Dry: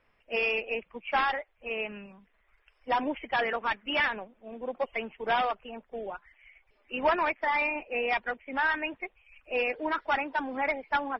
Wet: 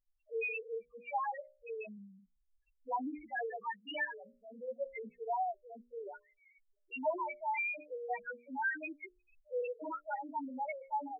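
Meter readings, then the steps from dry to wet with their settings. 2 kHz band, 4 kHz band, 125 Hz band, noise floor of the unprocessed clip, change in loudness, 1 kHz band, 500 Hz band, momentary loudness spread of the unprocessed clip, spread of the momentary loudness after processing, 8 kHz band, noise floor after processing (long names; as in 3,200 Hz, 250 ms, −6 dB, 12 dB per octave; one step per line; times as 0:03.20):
−10.5 dB, −17.0 dB, below −10 dB, −69 dBFS, −9.5 dB, −8.5 dB, −8.0 dB, 12 LU, 13 LU, can't be measured, −77 dBFS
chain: spectral peaks only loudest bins 1
mains-hum notches 60/120/180/240/300/360/420/480/540/600 Hz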